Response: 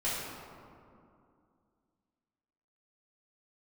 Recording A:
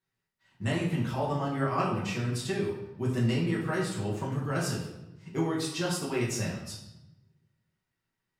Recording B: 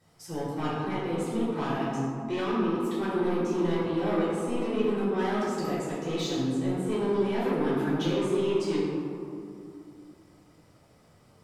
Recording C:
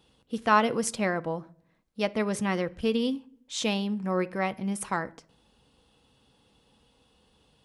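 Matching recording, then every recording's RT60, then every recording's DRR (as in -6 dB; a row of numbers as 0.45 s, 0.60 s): B; 0.90 s, 2.5 s, no single decay rate; -6.0 dB, -10.0 dB, 11.0 dB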